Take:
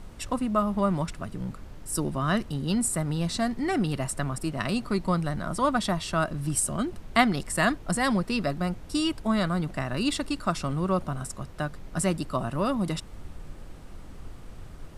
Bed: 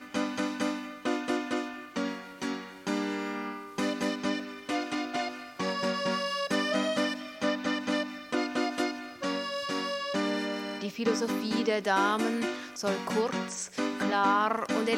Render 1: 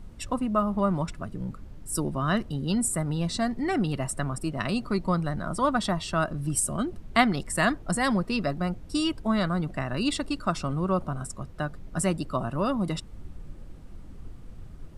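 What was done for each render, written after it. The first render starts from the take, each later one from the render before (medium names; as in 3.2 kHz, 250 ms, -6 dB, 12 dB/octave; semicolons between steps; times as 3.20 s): noise reduction 8 dB, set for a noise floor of -44 dBFS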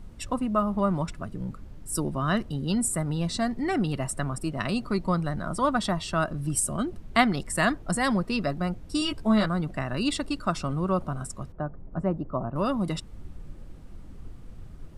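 9.00–9.46 s: doubling 14 ms -3.5 dB; 11.52–12.56 s: Chebyshev low-pass 880 Hz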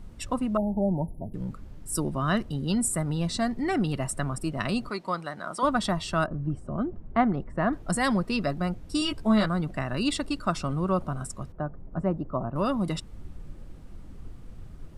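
0.57–1.34 s: brick-wall FIR band-stop 950–9900 Hz; 4.90–5.63 s: frequency weighting A; 6.26–7.73 s: low-pass 1.1 kHz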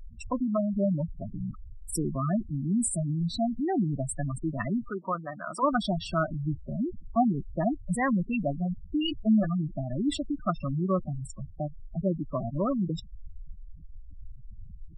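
spectral gate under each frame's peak -10 dB strong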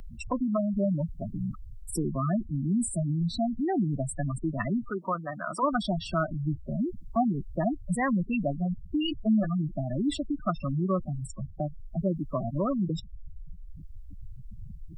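three bands compressed up and down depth 40%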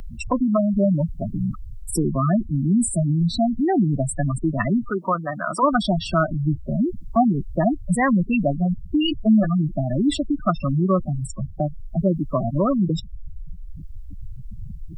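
trim +8 dB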